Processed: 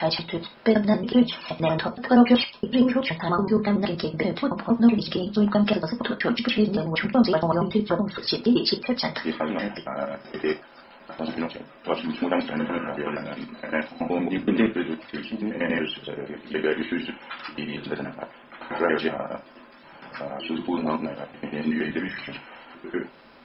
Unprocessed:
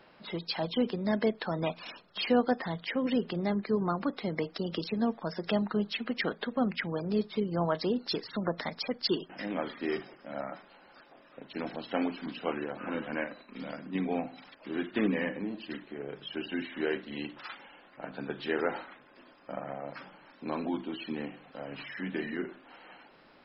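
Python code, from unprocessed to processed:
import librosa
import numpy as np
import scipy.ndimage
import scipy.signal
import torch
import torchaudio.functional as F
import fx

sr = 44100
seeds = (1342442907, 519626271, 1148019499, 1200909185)

y = fx.block_reorder(x, sr, ms=94.0, group=7)
y = fx.rev_gated(y, sr, seeds[0], gate_ms=100, shape='falling', drr_db=5.0)
y = F.gain(torch.from_numpy(y), 7.0).numpy()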